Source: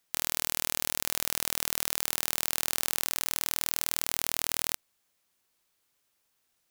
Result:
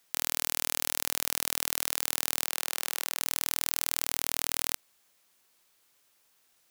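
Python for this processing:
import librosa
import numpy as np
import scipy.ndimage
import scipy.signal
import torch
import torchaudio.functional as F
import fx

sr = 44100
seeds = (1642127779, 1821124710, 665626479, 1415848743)

y = fx.low_shelf(x, sr, hz=180.0, db=-7.5)
y = fx.over_compress(y, sr, threshold_db=-35.0, ratio=-0.5)
y = fx.bass_treble(y, sr, bass_db=-14, treble_db=-3, at=(2.44, 3.21))
y = y * librosa.db_to_amplitude(3.5)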